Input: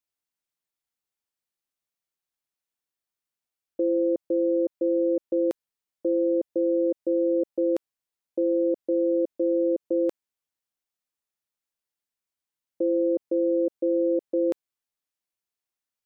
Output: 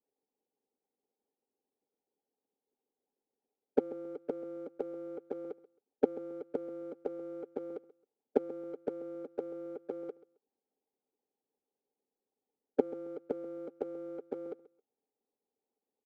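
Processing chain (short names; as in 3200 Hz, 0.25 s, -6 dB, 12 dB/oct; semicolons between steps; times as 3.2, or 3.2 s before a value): Wiener smoothing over 25 samples; EQ curve 150 Hz 0 dB, 340 Hz +9 dB, 520 Hz +10 dB, 1200 Hz -3 dB; harmonic-percussive split harmonic -17 dB; low shelf 200 Hz -7 dB; sample leveller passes 3; in parallel at -7 dB: soft clip -26.5 dBFS, distortion -13 dB; on the sum: flipped gate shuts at -27 dBFS, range -34 dB; small resonant body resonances 260/420/790 Hz, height 17 dB, ringing for 30 ms; on a send: feedback echo 0.134 s, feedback 21%, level -19 dB; on the sum: gain +2.5 dB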